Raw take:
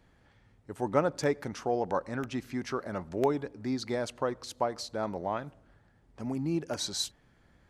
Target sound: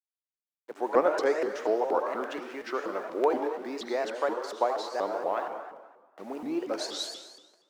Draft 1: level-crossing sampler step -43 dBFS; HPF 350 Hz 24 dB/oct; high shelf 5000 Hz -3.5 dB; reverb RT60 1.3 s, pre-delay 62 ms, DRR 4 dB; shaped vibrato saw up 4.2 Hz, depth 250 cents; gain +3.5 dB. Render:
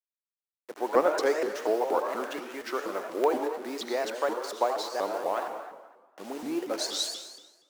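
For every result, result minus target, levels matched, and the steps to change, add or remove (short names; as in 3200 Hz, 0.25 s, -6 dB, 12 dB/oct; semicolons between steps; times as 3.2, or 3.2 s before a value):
8000 Hz band +6.0 dB; level-crossing sampler: distortion +7 dB
change: high shelf 5000 Hz -13.5 dB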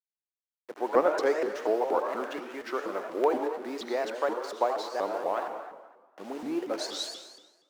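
level-crossing sampler: distortion +7 dB
change: level-crossing sampler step -50 dBFS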